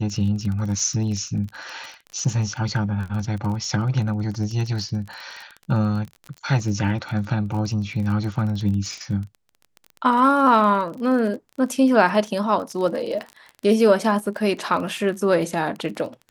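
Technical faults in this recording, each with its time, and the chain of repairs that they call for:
crackle 25 per s -29 dBFS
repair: de-click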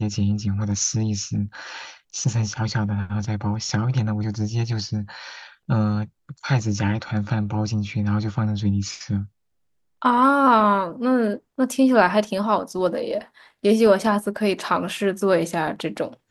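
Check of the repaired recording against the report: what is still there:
nothing left

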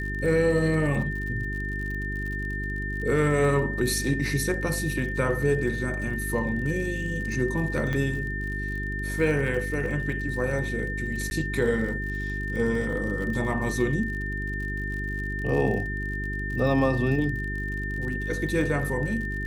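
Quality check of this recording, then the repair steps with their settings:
crackle 50 per s -34 dBFS
hum 50 Hz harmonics 8 -32 dBFS
whine 1.8 kHz -32 dBFS
7.93 s: pop -17 dBFS
11.30–11.31 s: dropout 11 ms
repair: de-click; de-hum 50 Hz, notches 8; band-stop 1.8 kHz, Q 30; interpolate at 11.30 s, 11 ms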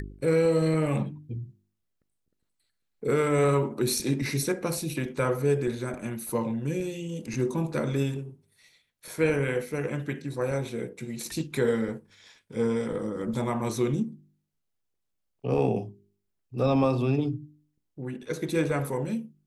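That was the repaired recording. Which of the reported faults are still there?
nothing left

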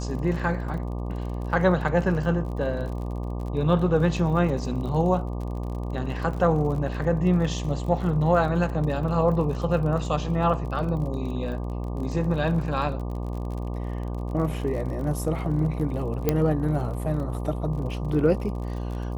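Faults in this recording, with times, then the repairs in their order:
buzz 60 Hz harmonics 20 -30 dBFS
crackle 42 per s -34 dBFS
16.29 s: pop -8 dBFS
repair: de-click; de-hum 60 Hz, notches 20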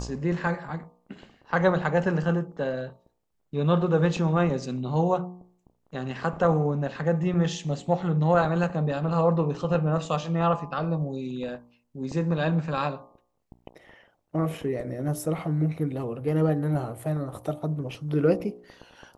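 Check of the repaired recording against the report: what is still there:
16.29 s: pop

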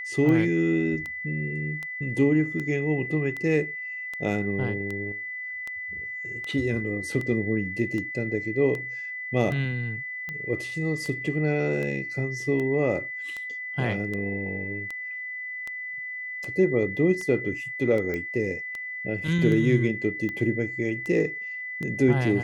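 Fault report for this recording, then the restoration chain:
tick 78 rpm -21 dBFS
whine 2 kHz -32 dBFS
18.14 s: pop -20 dBFS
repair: de-click; band-stop 2 kHz, Q 30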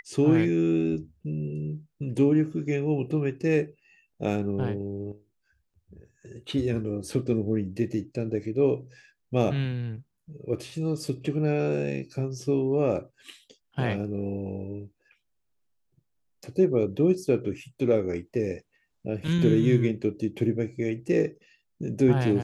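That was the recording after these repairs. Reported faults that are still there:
nothing left

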